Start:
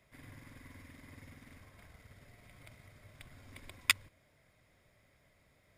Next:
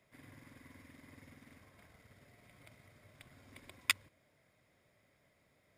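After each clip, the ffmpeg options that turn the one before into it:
-af "highpass=f=330:p=1,lowshelf=f=420:g=8.5,volume=-3.5dB"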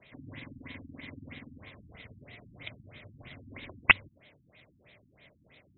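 -af "highshelf=f=2k:t=q:w=1.5:g=10.5,aeval=exprs='1.26*sin(PI/2*3.55*val(0)/1.26)':c=same,afftfilt=real='re*lt(b*sr/1024,290*pow(4200/290,0.5+0.5*sin(2*PI*3.1*pts/sr)))':imag='im*lt(b*sr/1024,290*pow(4200/290,0.5+0.5*sin(2*PI*3.1*pts/sr)))':win_size=1024:overlap=0.75,volume=-3.5dB"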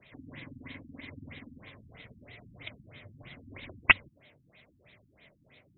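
-af "flanger=delay=0.4:depth=8.3:regen=-45:speed=0.81:shape=triangular,volume=3.5dB"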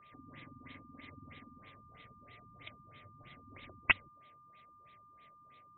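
-af "aeval=exprs='val(0)+0.00282*sin(2*PI*1200*n/s)':c=same,volume=-7.5dB"

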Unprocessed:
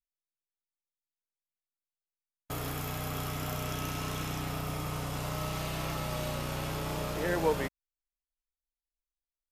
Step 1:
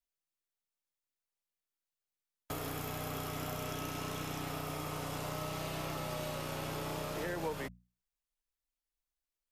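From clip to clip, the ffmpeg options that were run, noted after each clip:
-filter_complex "[0:a]acrossover=split=220|740[a][b][c];[a]acompressor=threshold=-44dB:ratio=4[d];[b]acompressor=threshold=-42dB:ratio=4[e];[c]acompressor=threshold=-43dB:ratio=4[f];[d][e][f]amix=inputs=3:normalize=0,bandreject=f=60:t=h:w=6,bandreject=f=120:t=h:w=6,bandreject=f=180:t=h:w=6,bandreject=f=240:t=h:w=6,volume=1dB"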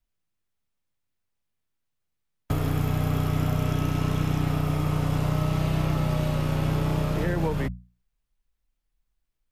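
-af "bass=f=250:g=14,treble=f=4k:g=-6,volume=7dB"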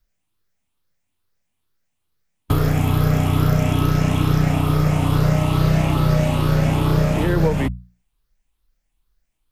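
-af "afftfilt=real='re*pow(10,7/40*sin(2*PI*(0.59*log(max(b,1)*sr/1024/100)/log(2)-(2.3)*(pts-256)/sr)))':imag='im*pow(10,7/40*sin(2*PI*(0.59*log(max(b,1)*sr/1024/100)/log(2)-(2.3)*(pts-256)/sr)))':win_size=1024:overlap=0.75,volume=7dB"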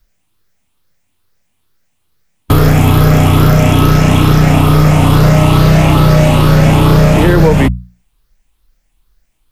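-af "apsyclip=13.5dB,volume=-1.5dB"

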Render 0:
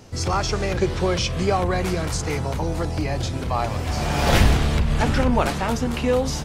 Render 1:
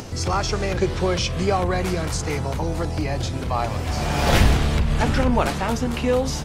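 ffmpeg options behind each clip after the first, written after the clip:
-af "acompressor=mode=upward:threshold=-26dB:ratio=2.5"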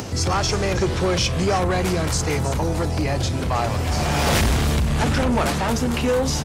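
-filter_complex "[0:a]highpass=f=46:w=0.5412,highpass=f=46:w=1.3066,acrossover=split=5600[a][b];[a]asoftclip=type=tanh:threshold=-20.5dB[c];[b]aecho=1:1:319:0.398[d];[c][d]amix=inputs=2:normalize=0,volume=5dB"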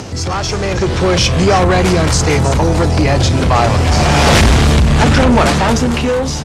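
-filter_complex "[0:a]asplit=2[a][b];[b]asoftclip=type=tanh:threshold=-23.5dB,volume=-3.5dB[c];[a][c]amix=inputs=2:normalize=0,lowpass=8.6k,dynaudnorm=f=380:g=5:m=10dB"

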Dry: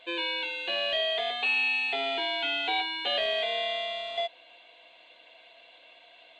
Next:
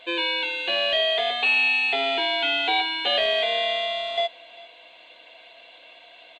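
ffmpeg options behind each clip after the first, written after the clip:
-af "aecho=1:1:397:0.0794,volume=6dB"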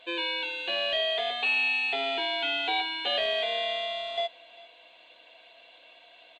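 -af "bandreject=f=2.1k:w=25,volume=-5.5dB"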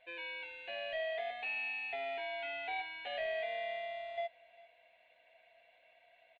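-af "firequalizer=gain_entry='entry(120,0);entry(330,-16);entry(650,0);entry(1100,-13);entry(2000,2);entry(3200,-15)':delay=0.05:min_phase=1,volume=-6.5dB"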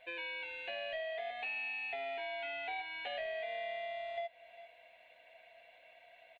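-af "acompressor=threshold=-46dB:ratio=2.5,volume=5.5dB"

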